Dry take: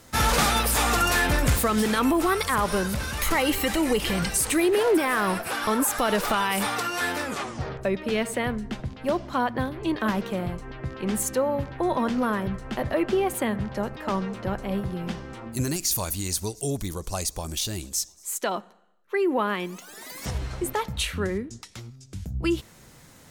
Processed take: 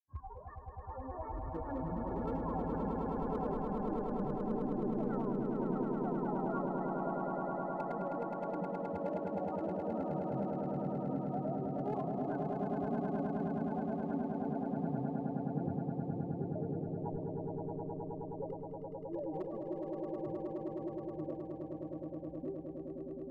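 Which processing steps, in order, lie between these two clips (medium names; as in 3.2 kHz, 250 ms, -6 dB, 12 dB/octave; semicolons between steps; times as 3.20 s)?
expander on every frequency bin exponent 1.5; steep low-pass 960 Hz 48 dB/octave; level held to a coarse grid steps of 13 dB; spectral noise reduction 23 dB; compressor with a negative ratio -33 dBFS, ratio -1; granulator 144 ms, grains 14 per s, pitch spread up and down by 7 st; hard clipper -31.5 dBFS, distortion -23 dB; on a send: echo with a slow build-up 105 ms, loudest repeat 8, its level -5 dB; on the sum: trim -3.5 dB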